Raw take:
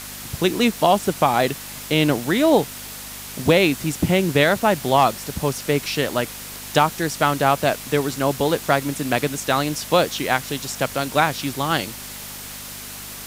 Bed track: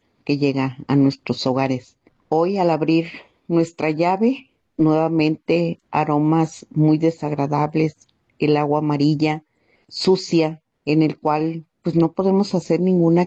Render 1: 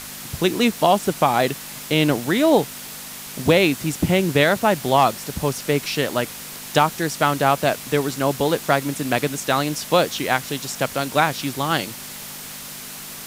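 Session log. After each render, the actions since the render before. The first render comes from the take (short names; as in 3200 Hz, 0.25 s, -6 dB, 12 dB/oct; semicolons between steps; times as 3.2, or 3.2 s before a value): de-hum 50 Hz, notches 2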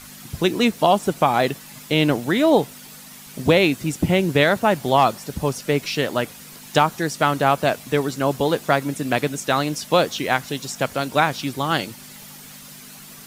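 denoiser 9 dB, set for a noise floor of -36 dBFS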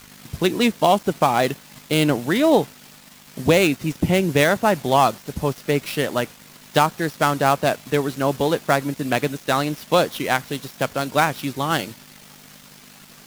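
switching dead time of 0.071 ms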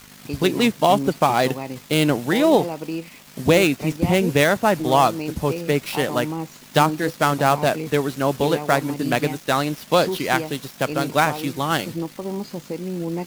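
add bed track -11.5 dB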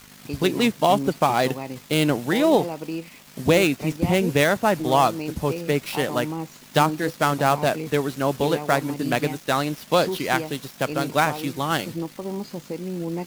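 gain -2 dB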